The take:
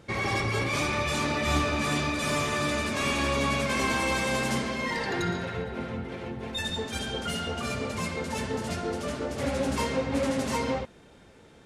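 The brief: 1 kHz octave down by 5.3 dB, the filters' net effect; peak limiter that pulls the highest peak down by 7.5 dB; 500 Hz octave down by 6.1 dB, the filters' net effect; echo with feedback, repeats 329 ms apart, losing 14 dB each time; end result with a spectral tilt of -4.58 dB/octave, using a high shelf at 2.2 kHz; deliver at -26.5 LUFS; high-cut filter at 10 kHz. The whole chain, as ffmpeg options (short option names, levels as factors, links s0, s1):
-af "lowpass=10000,equalizer=f=500:t=o:g=-6,equalizer=f=1000:t=o:g=-3,highshelf=f=2200:g=-8.5,alimiter=limit=0.0631:level=0:latency=1,aecho=1:1:329|658:0.2|0.0399,volume=2.24"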